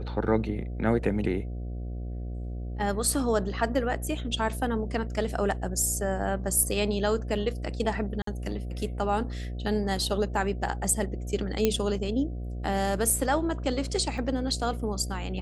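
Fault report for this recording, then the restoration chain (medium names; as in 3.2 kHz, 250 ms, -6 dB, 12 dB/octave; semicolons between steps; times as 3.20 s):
buzz 60 Hz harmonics 12 -34 dBFS
8.22–8.27 s: dropout 53 ms
11.65 s: pop -9 dBFS
14.18 s: dropout 3.6 ms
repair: de-click; de-hum 60 Hz, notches 12; interpolate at 8.22 s, 53 ms; interpolate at 14.18 s, 3.6 ms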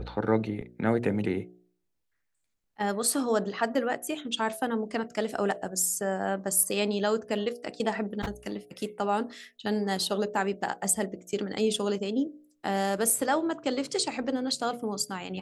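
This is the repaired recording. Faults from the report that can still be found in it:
nothing left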